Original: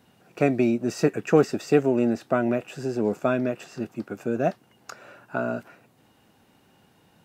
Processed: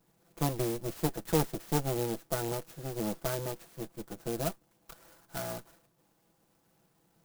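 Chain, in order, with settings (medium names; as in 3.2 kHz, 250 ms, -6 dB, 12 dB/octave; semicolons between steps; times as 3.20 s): comb filter that takes the minimum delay 6 ms; sampling jitter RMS 0.11 ms; trim -8.5 dB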